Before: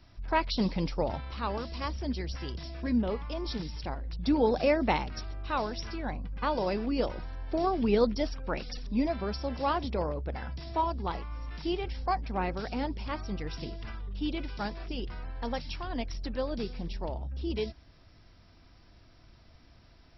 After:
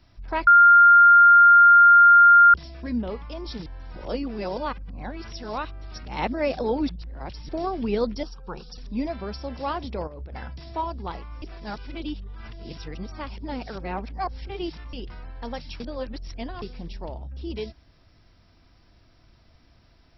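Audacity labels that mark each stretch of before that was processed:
0.470000	2.540000	bleep 1400 Hz -9 dBFS
3.660000	7.490000	reverse
8.230000	8.780000	fixed phaser centre 410 Hz, stages 8
10.070000	10.480000	negative-ratio compressor -36 dBFS, ratio -0.5
11.420000	14.930000	reverse
15.800000	16.620000	reverse

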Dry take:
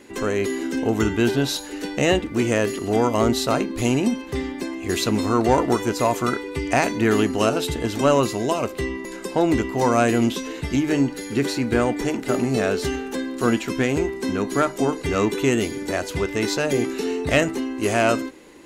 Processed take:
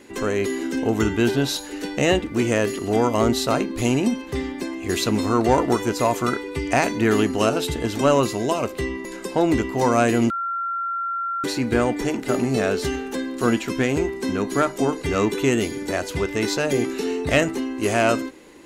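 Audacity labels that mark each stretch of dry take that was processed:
10.300000	11.440000	bleep 1370 Hz -23 dBFS

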